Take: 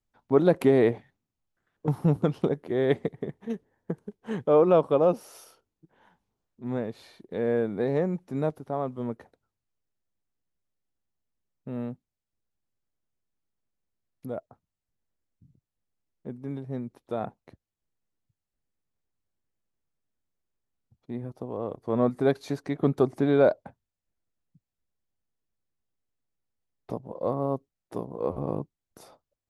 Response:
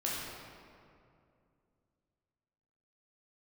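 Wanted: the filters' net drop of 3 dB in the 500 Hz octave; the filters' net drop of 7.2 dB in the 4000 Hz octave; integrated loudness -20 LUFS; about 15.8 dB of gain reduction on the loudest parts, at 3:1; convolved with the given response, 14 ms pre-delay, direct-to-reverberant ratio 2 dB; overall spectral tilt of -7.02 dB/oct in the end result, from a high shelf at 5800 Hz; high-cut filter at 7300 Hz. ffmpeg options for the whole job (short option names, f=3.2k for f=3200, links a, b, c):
-filter_complex "[0:a]lowpass=7.3k,equalizer=f=500:t=o:g=-3.5,equalizer=f=4k:t=o:g=-6,highshelf=f=5.8k:g=-7.5,acompressor=threshold=-40dB:ratio=3,asplit=2[a][b];[1:a]atrim=start_sample=2205,adelay=14[c];[b][c]afir=irnorm=-1:irlink=0,volume=-7.5dB[d];[a][d]amix=inputs=2:normalize=0,volume=21dB"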